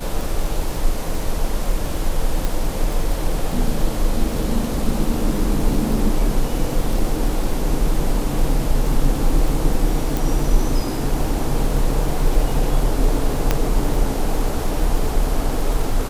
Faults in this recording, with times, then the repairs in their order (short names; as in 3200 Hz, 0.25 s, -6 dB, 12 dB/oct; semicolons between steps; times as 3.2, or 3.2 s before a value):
crackle 46/s -25 dBFS
2.45 pop
10.17 pop
13.51 pop -3 dBFS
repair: de-click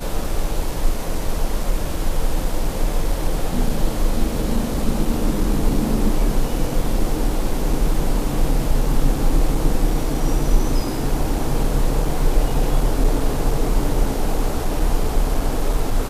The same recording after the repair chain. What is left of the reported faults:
10.17 pop